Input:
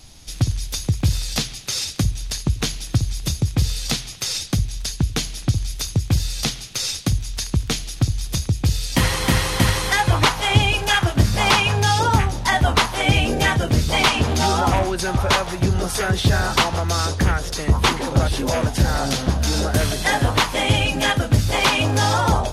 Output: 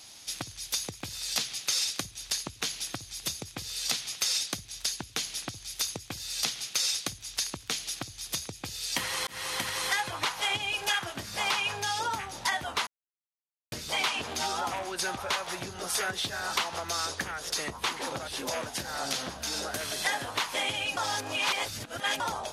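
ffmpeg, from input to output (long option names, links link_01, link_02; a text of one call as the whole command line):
ffmpeg -i in.wav -filter_complex "[0:a]asplit=6[link_01][link_02][link_03][link_04][link_05][link_06];[link_01]atrim=end=9.27,asetpts=PTS-STARTPTS,afade=type=out:start_time=9.266:duration=0.004:curve=hsin[link_07];[link_02]atrim=start=9.27:end=12.87,asetpts=PTS-STARTPTS,afade=type=in:duration=0.82:curve=qsin,afade=type=out:start_time=3.596:duration=0.004:curve=hsin[link_08];[link_03]atrim=start=12.87:end=13.72,asetpts=PTS-STARTPTS,volume=0[link_09];[link_04]atrim=start=13.72:end=20.972,asetpts=PTS-STARTPTS,afade=type=in:duration=0.004:curve=hsin[link_10];[link_05]atrim=start=20.968:end=22.202,asetpts=PTS-STARTPTS,areverse[link_11];[link_06]atrim=start=22.198[link_12];[link_07][link_08][link_09][link_10]concat=n=4:v=0:a=1[link_13];[link_13][link_11]acrossfade=duration=0.004:curve1=hsin:curve2=hsin[link_14];[link_14][link_12]acrossfade=duration=0.004:curve1=hsin:curve2=hsin,acompressor=threshold=-24dB:ratio=6,highpass=frequency=920:poles=1" out.wav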